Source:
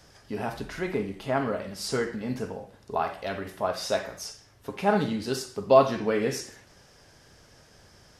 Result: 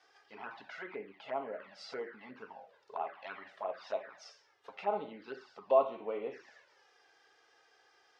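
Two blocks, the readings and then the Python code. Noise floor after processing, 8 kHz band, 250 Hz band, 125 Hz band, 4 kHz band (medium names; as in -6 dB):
-69 dBFS, under -25 dB, -20.0 dB, under -25 dB, -16.5 dB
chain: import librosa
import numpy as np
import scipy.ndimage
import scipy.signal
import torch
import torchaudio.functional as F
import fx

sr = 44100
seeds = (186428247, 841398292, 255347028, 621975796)

y = fx.env_lowpass_down(x, sr, base_hz=1700.0, full_db=-25.5)
y = fx.env_flanger(y, sr, rest_ms=2.7, full_db=-22.5)
y = fx.bandpass_edges(y, sr, low_hz=630.0, high_hz=3700.0)
y = y * 10.0 ** (-3.5 / 20.0)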